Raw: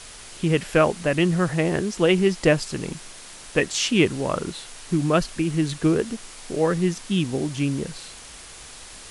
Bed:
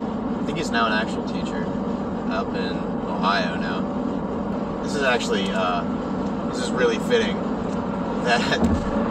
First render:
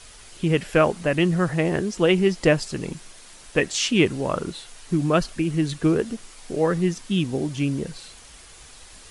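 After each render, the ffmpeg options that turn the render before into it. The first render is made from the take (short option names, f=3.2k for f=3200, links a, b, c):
-af "afftdn=nr=6:nf=-42"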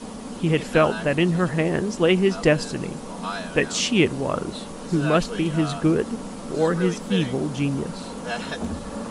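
-filter_complex "[1:a]volume=-9.5dB[a];[0:a][a]amix=inputs=2:normalize=0"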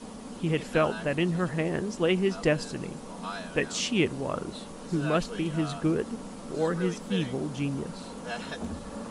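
-af "volume=-6.5dB"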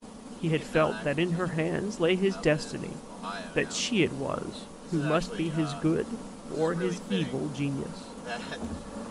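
-af "bandreject=f=60:t=h:w=6,bandreject=f=120:t=h:w=6,bandreject=f=180:t=h:w=6,agate=range=-33dB:threshold=-38dB:ratio=3:detection=peak"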